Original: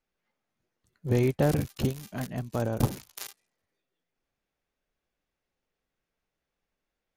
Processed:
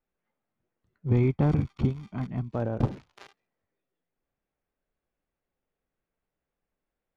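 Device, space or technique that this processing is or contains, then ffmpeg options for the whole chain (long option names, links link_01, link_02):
phone in a pocket: -filter_complex "[0:a]lowpass=3500,highshelf=frequency=2200:gain=-9.5,asettb=1/sr,asplit=3[link_01][link_02][link_03];[link_01]atrim=end=1.064[link_04];[link_02]atrim=start=1.06:end=2.53,asetpts=PTS-STARTPTS,afade=type=in:duration=0.004:curve=qsin,afade=type=out:start_time=1.466:duration=0.004:curve=qsin,aecho=1:1:0.9:0.58,atrim=end_sample=64827[link_05];[link_03]atrim=start=2.526[link_06];[link_04][link_05]acrossfade=duration=0.004:curve1=hsin:curve2=qsin[link_07];[link_07][link_06]acrossfade=duration=0.004:curve1=qsin:curve2=hsin"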